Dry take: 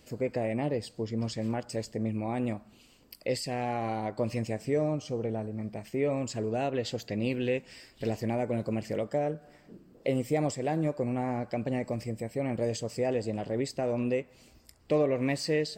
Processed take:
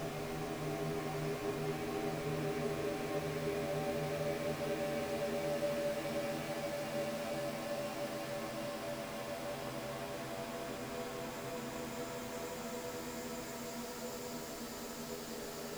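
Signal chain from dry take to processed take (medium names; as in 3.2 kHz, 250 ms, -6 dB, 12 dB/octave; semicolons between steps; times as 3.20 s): inharmonic resonator 79 Hz, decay 0.51 s, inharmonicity 0.002; delay with an opening low-pass 547 ms, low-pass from 750 Hz, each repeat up 2 oct, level 0 dB; small samples zeroed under -39 dBFS; Paulstretch 41×, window 0.25 s, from 5.95 s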